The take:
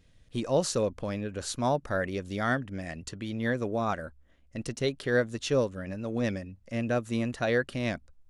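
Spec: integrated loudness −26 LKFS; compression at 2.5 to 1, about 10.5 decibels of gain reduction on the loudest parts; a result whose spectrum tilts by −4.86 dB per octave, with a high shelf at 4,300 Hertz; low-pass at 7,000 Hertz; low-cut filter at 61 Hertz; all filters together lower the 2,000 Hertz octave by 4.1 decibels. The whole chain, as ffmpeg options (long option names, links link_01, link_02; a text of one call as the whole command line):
ffmpeg -i in.wav -af "highpass=61,lowpass=7000,equalizer=frequency=2000:width_type=o:gain=-7,highshelf=frequency=4300:gain=8.5,acompressor=threshold=-37dB:ratio=2.5,volume=12.5dB" out.wav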